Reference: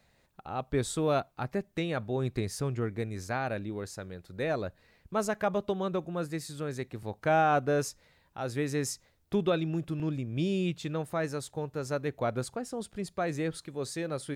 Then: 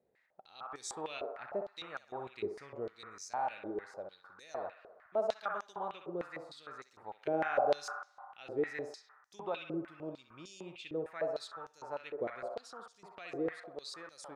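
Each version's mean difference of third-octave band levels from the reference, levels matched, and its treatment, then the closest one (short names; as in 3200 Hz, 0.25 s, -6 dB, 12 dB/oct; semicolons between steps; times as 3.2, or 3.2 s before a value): 10.0 dB: bell 1600 Hz -4 dB 1.8 oct; on a send: narrowing echo 64 ms, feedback 84%, band-pass 1100 Hz, level -3.5 dB; on the sum: stepped band-pass 6.6 Hz 410–6000 Hz; gain +4 dB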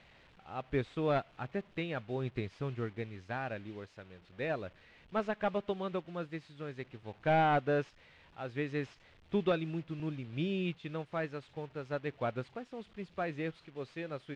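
4.5 dB: delta modulation 64 kbps, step -43 dBFS; synth low-pass 2900 Hz, resonance Q 1.6; upward expander 1.5:1, over -43 dBFS; gain -2.5 dB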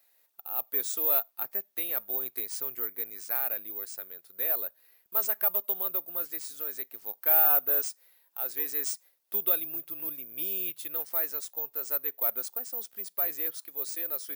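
13.5 dB: HPF 390 Hz 12 dB/oct; careless resampling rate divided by 3×, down none, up zero stuff; tilt +2 dB/oct; gain -7.5 dB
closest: second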